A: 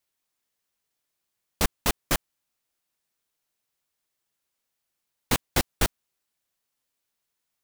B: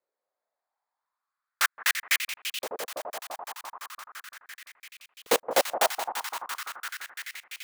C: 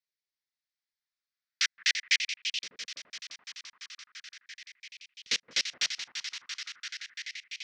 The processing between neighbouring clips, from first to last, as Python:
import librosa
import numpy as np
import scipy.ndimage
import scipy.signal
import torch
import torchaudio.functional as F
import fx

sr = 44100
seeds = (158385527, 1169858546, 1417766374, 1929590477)

y1 = fx.wiener(x, sr, points=15)
y1 = fx.echo_alternate(y1, sr, ms=170, hz=1200.0, feedback_pct=89, wet_db=-8.0)
y1 = fx.filter_lfo_highpass(y1, sr, shape='saw_up', hz=0.38, low_hz=450.0, high_hz=3000.0, q=3.7)
y2 = fx.curve_eq(y1, sr, hz=(180.0, 790.0, 2000.0, 5700.0, 12000.0), db=(0, -29, 6, 12, -30))
y2 = y2 * librosa.db_to_amplitude(-7.0)